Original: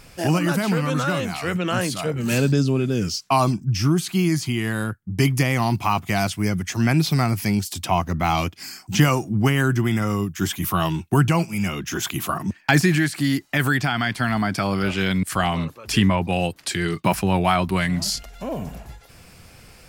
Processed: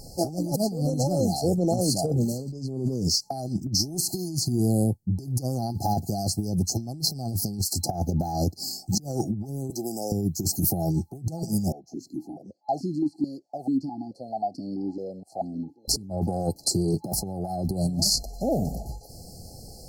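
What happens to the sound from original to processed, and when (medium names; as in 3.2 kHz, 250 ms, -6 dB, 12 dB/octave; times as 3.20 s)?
3.61–4.28 s: spectral peaks clipped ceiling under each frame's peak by 14 dB
9.70–10.12 s: high-pass 580 Hz
11.72–15.88 s: stepped vowel filter 4.6 Hz
whole clip: FFT band-reject 860–4100 Hz; compressor with a negative ratio -25 dBFS, ratio -0.5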